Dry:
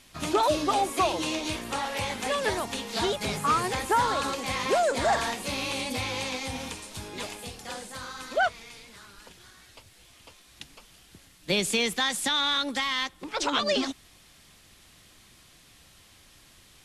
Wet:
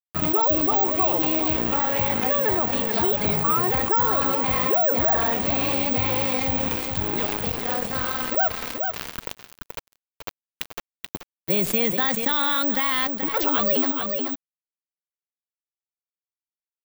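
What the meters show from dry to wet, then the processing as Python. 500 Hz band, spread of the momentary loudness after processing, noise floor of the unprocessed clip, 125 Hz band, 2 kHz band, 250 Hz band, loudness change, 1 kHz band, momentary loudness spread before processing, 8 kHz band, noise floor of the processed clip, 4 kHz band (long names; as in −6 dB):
+4.0 dB, 17 LU, −56 dBFS, +7.5 dB, +1.5 dB, +6.5 dB, +7.0 dB, +2.5 dB, 14 LU, −4.5 dB, below −85 dBFS, −2.5 dB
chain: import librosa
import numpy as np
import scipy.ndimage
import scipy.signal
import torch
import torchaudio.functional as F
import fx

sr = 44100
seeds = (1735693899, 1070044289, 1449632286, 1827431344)

p1 = fx.lowpass(x, sr, hz=1200.0, slope=6)
p2 = np.sign(p1) * np.maximum(np.abs(p1) - 10.0 ** (-46.5 / 20.0), 0.0)
p3 = p2 + fx.echo_single(p2, sr, ms=431, db=-17.5, dry=0)
p4 = (np.kron(p3[::2], np.eye(2)[0]) * 2)[:len(p3)]
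y = fx.env_flatten(p4, sr, amount_pct=70)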